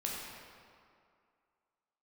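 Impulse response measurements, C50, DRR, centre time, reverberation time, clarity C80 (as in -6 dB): -1.0 dB, -3.5 dB, 116 ms, 2.3 s, 0.5 dB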